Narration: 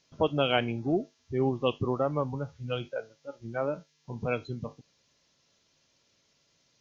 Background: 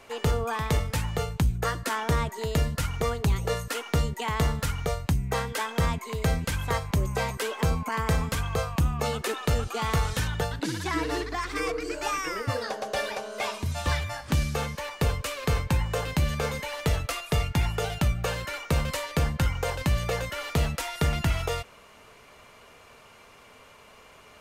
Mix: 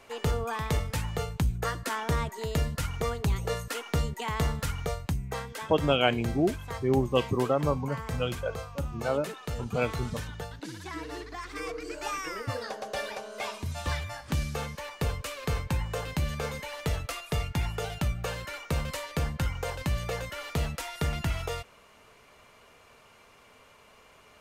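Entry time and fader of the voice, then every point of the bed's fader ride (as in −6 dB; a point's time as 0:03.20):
5.50 s, +2.0 dB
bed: 0:04.83 −3 dB
0:05.77 −10 dB
0:11.08 −10 dB
0:12.09 −4.5 dB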